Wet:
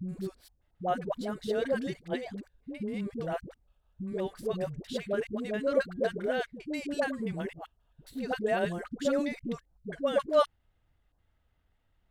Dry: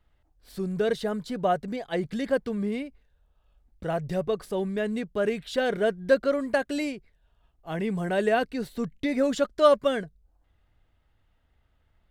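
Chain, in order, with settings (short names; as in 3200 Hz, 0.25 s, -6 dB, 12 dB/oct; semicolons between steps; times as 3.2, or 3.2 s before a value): slices in reverse order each 0.133 s, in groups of 6; dispersion highs, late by 86 ms, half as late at 470 Hz; gain -5 dB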